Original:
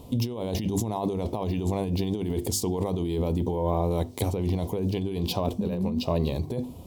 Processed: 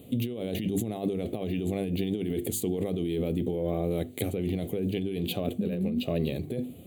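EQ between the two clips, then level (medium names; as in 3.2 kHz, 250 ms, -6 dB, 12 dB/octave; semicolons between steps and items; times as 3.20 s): high-pass 110 Hz 12 dB/octave; bass shelf 140 Hz -6.5 dB; static phaser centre 2.3 kHz, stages 4; +2.0 dB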